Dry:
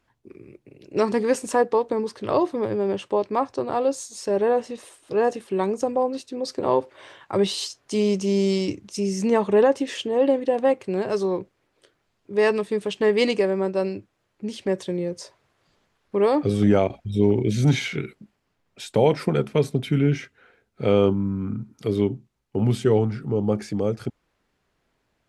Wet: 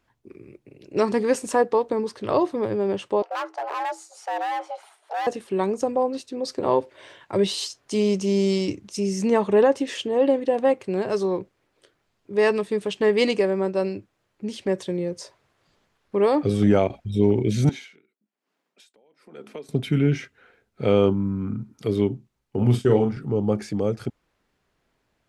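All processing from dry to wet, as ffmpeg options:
-filter_complex "[0:a]asettb=1/sr,asplit=3[a][b][c];[a]atrim=end=3.224[d];[b]atrim=start=3.22:end=5.27,asetpts=PTS-STARTPTS,afade=t=in:d=0.004:c=qsin,afade=t=out:st=2.046:d=0.004:c=qsin,highshelf=f=3.1k:g=-12,asoftclip=type=hard:threshold=-25dB,afreqshift=320[e];[c]atrim=start=5.266[f];[d][e]acrossfade=d=0.004:c1=hsin:c2=qsin[g];[g][f]acrossfade=d=0.004:c1=qsin:c2=hsin,asettb=1/sr,asplit=3[h][i][j];[h]atrim=end=6.794[k];[i]atrim=start=6.79:end=7.48,asetpts=PTS-STARTPTS,afade=t=in:d=0.004:c=qsin,afade=t=out:st=0.686:d=0.004:c=qsin,equalizer=f=1.2k:t=o:w=0.41:g=-6.5,bandreject=f=800:w=12[l];[j]atrim=start=7.476[m];[k][l]acrossfade=d=0.004:c1=hsin:c2=qsin[n];[n][m]acrossfade=d=0.004:c1=qsin:c2=hsin,asettb=1/sr,asplit=3[o][p][q];[o]atrim=end=17.694[r];[p]atrim=start=17.69:end=19.69,asetpts=PTS-STARTPTS,afade=t=in:d=0.004:c=qsin,afade=t=out:st=1.996:d=0.004:c=qsin,highpass=f=220:w=0.5412,highpass=f=220:w=1.3066,acompressor=threshold=-37dB:ratio=2.5:attack=3.2:release=140:knee=1:detection=peak,aeval=exprs='val(0)*pow(10,-28*(0.5-0.5*cos(2*PI*1.1*n/s))/20)':c=same[s];[q]atrim=start=19.686[t];[r][s]acrossfade=d=0.004:c1=hsin:c2=qsin[u];[u][t]acrossfade=d=0.004:c1=qsin:c2=hsin,asettb=1/sr,asplit=3[v][w][x];[v]atrim=end=22.574[y];[w]atrim=start=22.57:end=23.17,asetpts=PTS-STARTPTS,afade=t=in:d=0.004:c=qsin,afade=t=out:st=0.596:d=0.004:c=qsin,bandreject=f=4.1k:w=18,agate=range=-33dB:threshold=-26dB:ratio=3:release=100:detection=peak,asplit=2[z][aa];[aa]adelay=41,volume=-5.5dB[ab];[z][ab]amix=inputs=2:normalize=0,atrim=end_sample=26460[ac];[x]atrim=start=23.166[ad];[y][ac]acrossfade=d=0.004:c1=hsin:c2=qsin[ae];[ae][ad]acrossfade=d=0.004:c1=qsin:c2=hsin"

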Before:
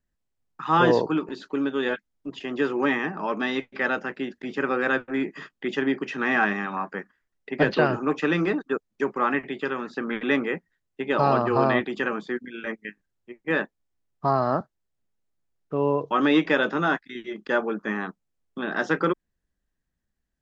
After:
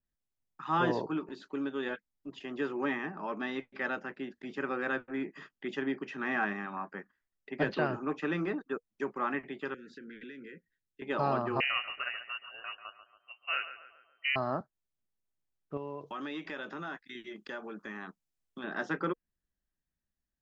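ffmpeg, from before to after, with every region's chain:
-filter_complex "[0:a]asettb=1/sr,asplit=3[a][b][c];[a]atrim=end=9.744[d];[b]atrim=start=9.74:end=11.02,asetpts=PTS-STARTPTS,afade=t=in:d=0.004:c=qsin,afade=t=out:st=1.276:d=0.004:c=qsin,acompressor=threshold=-33dB:ratio=12:attack=3.2:release=140:knee=1:detection=peak,asuperstop=centerf=870:order=20:qfactor=0.99[e];[c]atrim=start=11.016[f];[d][e]acrossfade=d=0.004:c1=hsin:c2=qsin[g];[g][f]acrossfade=d=0.004:c1=qsin:c2=hsin,asettb=1/sr,asplit=3[h][i][j];[h]atrim=end=11.604[k];[i]atrim=start=11.6:end=14.36,asetpts=PTS-STARTPTS,afade=t=in:d=0.004:c=qsin,afade=t=out:st=2.756:d=0.004:c=qsin,lowpass=f=2.6k:t=q:w=0.5098,lowpass=f=2.6k:t=q:w=0.6013,lowpass=f=2.6k:t=q:w=0.9,lowpass=f=2.6k:t=q:w=2.563,afreqshift=-3100,asplit=2[l][m];[m]adelay=140,lowpass=f=1.8k:p=1,volume=-9.5dB,asplit=2[n][o];[o]adelay=140,lowpass=f=1.8k:p=1,volume=0.54,asplit=2[p][q];[q]adelay=140,lowpass=f=1.8k:p=1,volume=0.54,asplit=2[r][s];[s]adelay=140,lowpass=f=1.8k:p=1,volume=0.54,asplit=2[t][u];[u]adelay=140,lowpass=f=1.8k:p=1,volume=0.54,asplit=2[v][w];[w]adelay=140,lowpass=f=1.8k:p=1,volume=0.54[x];[l][n][p][r][t][v][x]amix=inputs=7:normalize=0,atrim=end_sample=121716[y];[j]atrim=start=14.356[z];[k][y]acrossfade=d=0.004:c1=hsin:c2=qsin[aa];[aa][z]acrossfade=d=0.004:c1=qsin:c2=hsin,asettb=1/sr,asplit=3[ab][ac][ad];[ab]atrim=end=15.774[ae];[ac]atrim=start=15.77:end=18.64,asetpts=PTS-STARTPTS,afade=t=in:d=0.004:c=qsin,afade=t=out:st=2.866:d=0.004:c=qsin,highshelf=f=2.1k:g=7.5,acompressor=threshold=-30dB:ratio=3:attack=3.2:release=140:knee=1:detection=peak[af];[ad]atrim=start=18.636[ag];[ae][af]acrossfade=d=0.004:c1=hsin:c2=qsin[ah];[ah][ag]acrossfade=d=0.004:c1=qsin:c2=hsin,bandreject=f=480:w=12,adynamicequalizer=threshold=0.00891:dfrequency=2900:dqfactor=0.7:tfrequency=2900:tqfactor=0.7:attack=5:release=100:ratio=0.375:range=3:mode=cutabove:tftype=highshelf,volume=-9dB"

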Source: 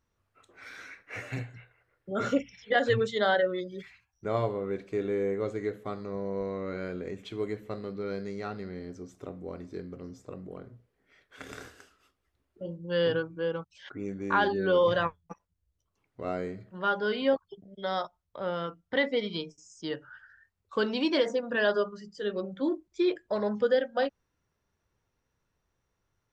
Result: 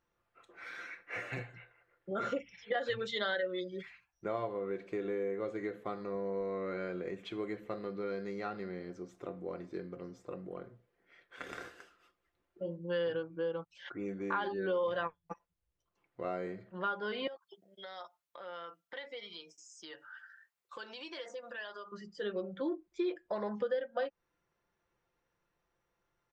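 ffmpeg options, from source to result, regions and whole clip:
-filter_complex "[0:a]asettb=1/sr,asplit=3[a][b][c];[a]atrim=end=2.814[d];[b]atrim=start=2.81:end=3.7,asetpts=PTS-STARTPTS,afade=t=in:d=0.004:c=qsin,afade=t=out:st=0.886:d=0.004:c=qsin,equalizer=f=4.2k:t=o:w=1.6:g=8,bandreject=f=730:w=8.1[e];[c]atrim=start=3.696[f];[d][e]acrossfade=d=0.004:c1=hsin:c2=qsin[g];[g][f]acrossfade=d=0.004:c1=qsin:c2=hsin,asettb=1/sr,asplit=3[h][i][j];[h]atrim=end=17.274[k];[i]atrim=start=17.27:end=21.92,asetpts=PTS-STARTPTS,afade=t=in:d=0.004:c=qsin,afade=t=out:st=4.646:d=0.004:c=qsin,highpass=f=940:p=1,highshelf=f=5.5k:g=12,acompressor=threshold=-45dB:ratio=3:attack=3.2:release=140:knee=1:detection=peak[l];[j]atrim=start=21.916[m];[k][l]acrossfade=d=0.004:c1=hsin:c2=qsin[n];[n][m]acrossfade=d=0.004:c1=qsin:c2=hsin,bass=f=250:g=-8,treble=f=4k:g=-9,aecho=1:1:5.8:0.44,acompressor=threshold=-34dB:ratio=3"

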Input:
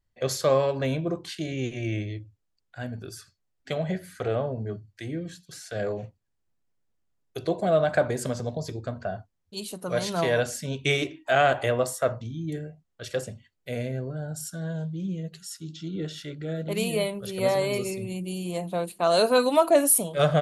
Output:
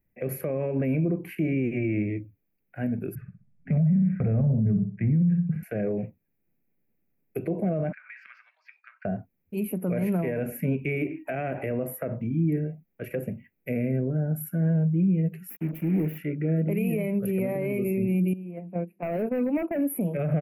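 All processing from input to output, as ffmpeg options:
-filter_complex "[0:a]asettb=1/sr,asplit=3[a][b][c];[a]atrim=end=3.154[d];[b]atrim=start=3.15:end=5.63,asetpts=PTS-STARTPTS,afade=t=in:d=0.004:c=qsin,afade=t=out:st=2.476:d=0.004:c=qsin,lowpass=1.8k,lowshelf=f=240:t=q:w=3:g=11,asplit=2[e][f];[f]adelay=63,lowpass=f=1.1k:p=1,volume=-7.5dB,asplit=2[g][h];[h]adelay=63,lowpass=f=1.1k:p=1,volume=0.33,asplit=2[i][j];[j]adelay=63,lowpass=f=1.1k:p=1,volume=0.33,asplit=2[k][l];[l]adelay=63,lowpass=f=1.1k:p=1,volume=0.33[m];[e][g][i][k][m]amix=inputs=5:normalize=0,atrim=end_sample=109368[n];[c]atrim=start=5.626[o];[d][n]acrossfade=d=0.004:c1=hsin:c2=qsin[p];[p][o]acrossfade=d=0.004:c1=qsin:c2=hsin,asettb=1/sr,asplit=3[q][r][s];[q]atrim=end=7.924[t];[r]atrim=start=7.92:end=9.05,asetpts=PTS-STARTPTS,afade=t=in:d=0.004:c=qsin,afade=t=out:st=1.126:d=0.004:c=qsin,asuperpass=centerf=2600:order=12:qfactor=0.64,acompressor=threshold=-41dB:ratio=16:attack=3.2:release=140:knee=1:detection=peak[u];[s]atrim=start=9.046[v];[t][u]acrossfade=d=0.004:c1=hsin:c2=qsin[w];[w][v]acrossfade=d=0.004:c1=qsin:c2=hsin,asettb=1/sr,asplit=3[x][y][z];[x]atrim=end=15.504[aa];[y]atrim=start=15.5:end=16.18,asetpts=PTS-STARTPTS,afade=t=in:d=0.004:c=qsin,afade=t=out:st=0.676:d=0.004:c=qsin,equalizer=f=8.8k:t=o:w=0.94:g=-8,volume=31.5dB,asoftclip=hard,volume=-31.5dB,acrusher=bits=6:mix=0:aa=0.5[ab];[z]atrim=start=16.176[ac];[aa][ab]acrossfade=d=0.004:c1=hsin:c2=qsin[ad];[ad][ac]acrossfade=d=0.004:c1=qsin:c2=hsin,asettb=1/sr,asplit=3[ae][af][ag];[ae]atrim=end=18.334[ah];[af]atrim=start=18.33:end=20.01,asetpts=PTS-STARTPTS,afade=t=in:d=0.004:c=qsin,afade=t=out:st=1.676:d=0.004:c=qsin,agate=range=-16dB:threshold=-27dB:ratio=16:release=100:detection=peak,lowpass=f=2k:p=1,volume=19.5dB,asoftclip=hard,volume=-19.5dB[ai];[ag]atrim=start=20.006[aj];[ah][ai]acrossfade=d=0.004:c1=hsin:c2=qsin[ak];[ak][aj]acrossfade=d=0.004:c1=qsin:c2=hsin,firequalizer=gain_entry='entry(100,0);entry(180,12);entry(1100,-6);entry(2400,9);entry(3500,-28);entry(8200,-21);entry(12000,12)':delay=0.05:min_phase=1,alimiter=limit=-17dB:level=0:latency=1:release=59,acrossover=split=340[al][am];[am]acompressor=threshold=-35dB:ratio=2[an];[al][an]amix=inputs=2:normalize=0"

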